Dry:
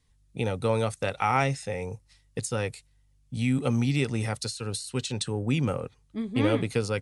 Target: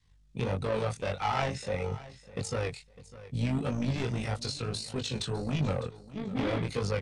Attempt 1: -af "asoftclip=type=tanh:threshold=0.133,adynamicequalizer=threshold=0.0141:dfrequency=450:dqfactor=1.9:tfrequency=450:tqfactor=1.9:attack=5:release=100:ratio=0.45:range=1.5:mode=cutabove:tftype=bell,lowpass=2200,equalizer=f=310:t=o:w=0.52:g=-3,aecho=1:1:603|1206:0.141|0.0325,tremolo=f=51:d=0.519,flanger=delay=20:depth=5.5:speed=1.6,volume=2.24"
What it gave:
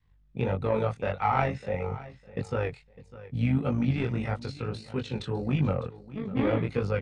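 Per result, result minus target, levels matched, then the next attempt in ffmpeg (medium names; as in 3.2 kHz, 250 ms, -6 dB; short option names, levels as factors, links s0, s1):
8 kHz band -18.0 dB; saturation: distortion -9 dB
-af "asoftclip=type=tanh:threshold=0.133,adynamicequalizer=threshold=0.0141:dfrequency=450:dqfactor=1.9:tfrequency=450:tqfactor=1.9:attack=5:release=100:ratio=0.45:range=1.5:mode=cutabove:tftype=bell,lowpass=6100,equalizer=f=310:t=o:w=0.52:g=-3,aecho=1:1:603|1206:0.141|0.0325,tremolo=f=51:d=0.519,flanger=delay=20:depth=5.5:speed=1.6,volume=2.24"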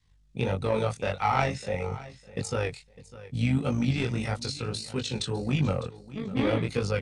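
saturation: distortion -9 dB
-af "asoftclip=type=tanh:threshold=0.0447,adynamicequalizer=threshold=0.0141:dfrequency=450:dqfactor=1.9:tfrequency=450:tqfactor=1.9:attack=5:release=100:ratio=0.45:range=1.5:mode=cutabove:tftype=bell,lowpass=6100,equalizer=f=310:t=o:w=0.52:g=-3,aecho=1:1:603|1206:0.141|0.0325,tremolo=f=51:d=0.519,flanger=delay=20:depth=5.5:speed=1.6,volume=2.24"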